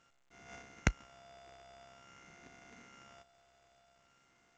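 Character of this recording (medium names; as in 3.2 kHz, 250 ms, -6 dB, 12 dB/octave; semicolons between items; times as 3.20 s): a buzz of ramps at a fixed pitch in blocks of 64 samples; phasing stages 4, 0.49 Hz, lowest notch 250–1100 Hz; aliases and images of a low sample rate 4.2 kHz, jitter 0%; A-law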